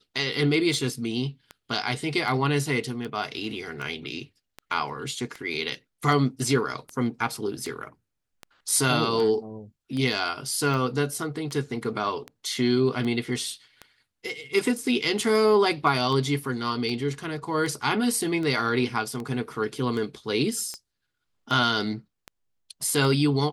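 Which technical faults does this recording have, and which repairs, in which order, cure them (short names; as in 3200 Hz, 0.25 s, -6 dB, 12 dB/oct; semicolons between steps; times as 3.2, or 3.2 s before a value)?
tick 78 rpm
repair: de-click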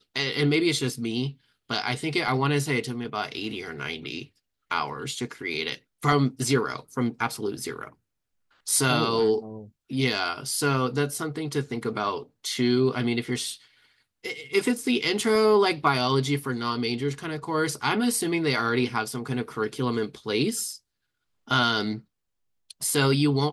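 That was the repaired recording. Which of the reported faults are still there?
none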